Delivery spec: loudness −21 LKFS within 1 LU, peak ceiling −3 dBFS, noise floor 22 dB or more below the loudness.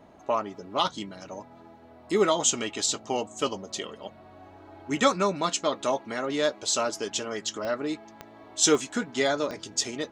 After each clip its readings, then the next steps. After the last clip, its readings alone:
number of clicks 4; integrated loudness −27.5 LKFS; sample peak −7.5 dBFS; target loudness −21.0 LKFS
→ click removal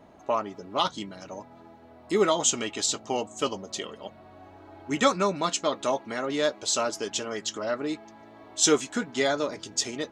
number of clicks 0; integrated loudness −27.5 LKFS; sample peak −7.5 dBFS; target loudness −21.0 LKFS
→ level +6.5 dB
brickwall limiter −3 dBFS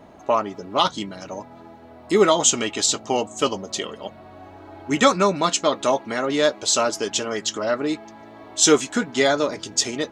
integrated loudness −21.0 LKFS; sample peak −3.0 dBFS; background noise floor −45 dBFS

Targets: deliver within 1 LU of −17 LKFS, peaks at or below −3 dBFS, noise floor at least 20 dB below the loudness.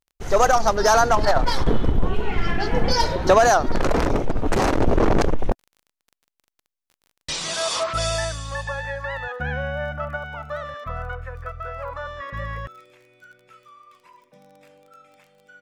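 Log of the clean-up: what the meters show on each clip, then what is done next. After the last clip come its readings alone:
crackle rate 23 per second; integrated loudness −23.0 LKFS; sample peak −6.0 dBFS; target loudness −17.0 LKFS
→ click removal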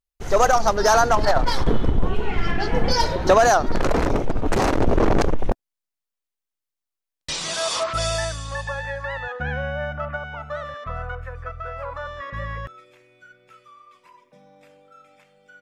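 crackle rate 0.13 per second; integrated loudness −23.0 LKFS; sample peak −6.0 dBFS; target loudness −17.0 LKFS
→ level +6 dB
brickwall limiter −3 dBFS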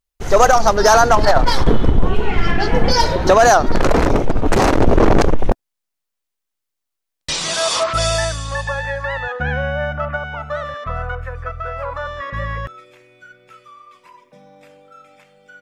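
integrated loudness −17.5 LKFS; sample peak −3.0 dBFS; background noise floor −79 dBFS

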